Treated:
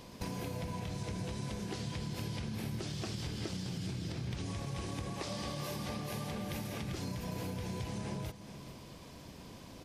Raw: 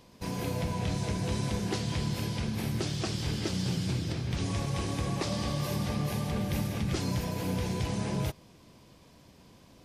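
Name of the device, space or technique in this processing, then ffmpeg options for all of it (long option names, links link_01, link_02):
serial compression, leveller first: -filter_complex "[0:a]asettb=1/sr,asplit=3[link_01][link_02][link_03];[link_01]atrim=end=5.134[link_04];[link_02]atrim=start=5.13:end=6.89,asetpts=PTS-STARTPTS,afade=type=in:duration=0.004:curve=qsin,afade=type=out:start_time=1.756:duration=0.004:curve=qsin,lowshelf=frequency=180:gain=-8[link_05];[link_03]atrim=start=6.886[link_06];[link_04][link_05]acrossfade=duration=0.004:curve1=hsin:curve2=qsin[link_07];[link_07][link_06]acrossfade=duration=0.004:curve1=qsin:curve2=hsin,acompressor=threshold=-30dB:ratio=6,acompressor=threshold=-43dB:ratio=5,aecho=1:1:419:0.224,volume=5.5dB"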